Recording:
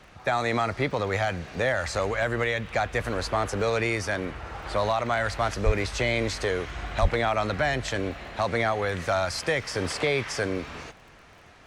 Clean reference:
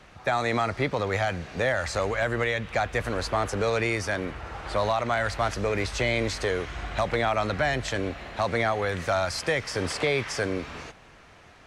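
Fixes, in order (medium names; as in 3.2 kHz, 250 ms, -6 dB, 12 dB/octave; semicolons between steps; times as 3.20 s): de-click; 5.65–5.77 s: high-pass 140 Hz 24 dB/octave; 7.01–7.13 s: high-pass 140 Hz 24 dB/octave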